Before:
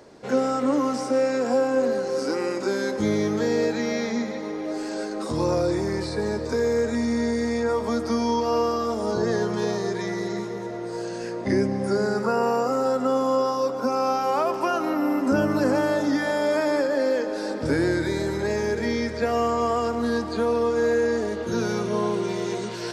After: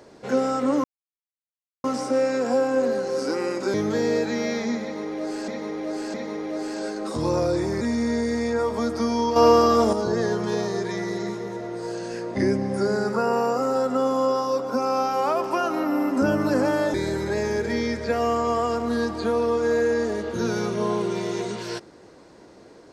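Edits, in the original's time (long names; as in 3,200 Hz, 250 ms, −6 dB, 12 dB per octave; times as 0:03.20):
0:00.84: splice in silence 1.00 s
0:02.74–0:03.21: remove
0:04.29–0:04.95: repeat, 3 plays
0:05.96–0:06.91: remove
0:08.46–0:09.03: clip gain +7.5 dB
0:16.04–0:18.07: remove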